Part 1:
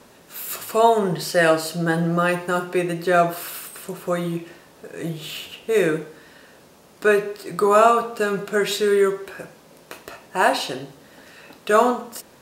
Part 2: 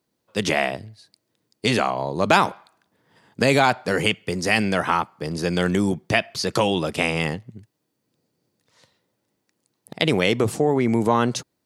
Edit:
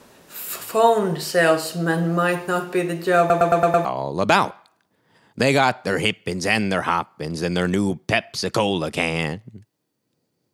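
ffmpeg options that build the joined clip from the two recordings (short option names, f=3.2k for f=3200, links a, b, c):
-filter_complex "[0:a]apad=whole_dur=10.53,atrim=end=10.53,asplit=6[a][b][c][d][e][f];[a]atrim=end=3.302[g];[b]atrim=start=3.188:end=3.302[h];[c]atrim=start=3.188:end=3.302[i];[d]atrim=start=3.188:end=3.302[j];[e]atrim=start=3.188:end=3.302[k];[f]atrim=start=3.188:end=3.302[l];[1:a]atrim=start=1.858:end=8.54[m];[g][h]acrossfade=d=0.004:c1=hsin:c2=hsin[n];[n][i]acrossfade=d=0.004:c1=hsin:c2=hsin[o];[o][j]acrossfade=d=0.004:c1=hsin:c2=hsin[p];[p][k]acrossfade=d=0.004:c1=hsin:c2=hsin[q];[q][l]acrossfade=d=0.004:c1=hsin:c2=hsin[r];[r][m]acrossfade=d=0.004:c1=hsin:c2=hsin"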